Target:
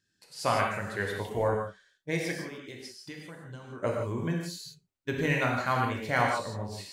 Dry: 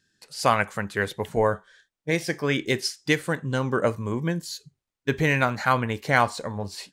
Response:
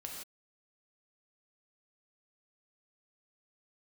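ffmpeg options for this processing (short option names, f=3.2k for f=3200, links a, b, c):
-filter_complex "[0:a]asettb=1/sr,asplit=3[a][b][c];[a]atrim=end=2.404[d];[b]atrim=start=2.4:end=3.83,asetpts=PTS-STARTPTS,afade=t=in:d=0.004:c=qsin,afade=t=out:st=1.426:d=0.004:c=qsin,acompressor=threshold=-37dB:ratio=4[e];[c]atrim=start=3.826[f];[d][e]acrossfade=d=0.004:c1=hsin:c2=qsin[g];[g][f]acrossfade=d=0.004:c1=qsin:c2=hsin[h];[1:a]atrim=start_sample=2205[i];[h][i]afir=irnorm=-1:irlink=0,volume=-3dB"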